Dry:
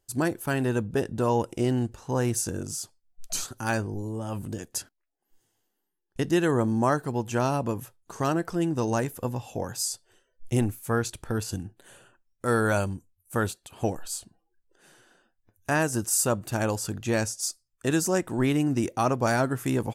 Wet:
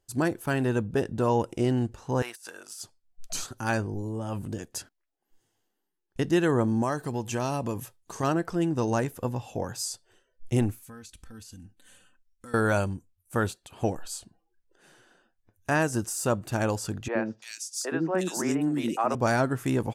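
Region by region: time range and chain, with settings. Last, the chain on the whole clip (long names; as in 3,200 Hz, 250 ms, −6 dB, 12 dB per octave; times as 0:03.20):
0:02.22–0:02.81: high-pass filter 1,100 Hz + compressor whose output falls as the input rises −35 dBFS, ratio −0.5 + parametric band 6,600 Hz −8.5 dB 0.68 octaves
0:06.82–0:08.23: high-shelf EQ 3,100 Hz +7.5 dB + notch filter 1,400 Hz, Q 11 + downward compressor 2 to 1, threshold −26 dBFS
0:10.83–0:12.54: parametric band 600 Hz −14 dB 2.9 octaves + comb filter 3.9 ms, depth 71% + downward compressor 4 to 1, threshold −43 dBFS
0:17.08–0:19.15: high-pass filter 170 Hz 24 dB per octave + three-band delay without the direct sound mids, lows, highs 70/340 ms, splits 390/2,500 Hz
whole clip: de-essing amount 40%; high-shelf EQ 8,300 Hz −7.5 dB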